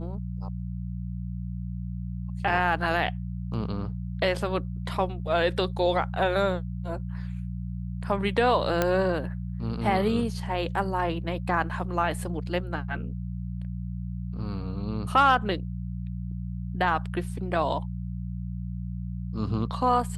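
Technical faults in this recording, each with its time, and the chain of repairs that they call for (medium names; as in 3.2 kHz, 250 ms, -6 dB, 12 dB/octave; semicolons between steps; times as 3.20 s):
hum 60 Hz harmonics 3 -33 dBFS
8.82 s: pop -9 dBFS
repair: de-click; de-hum 60 Hz, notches 3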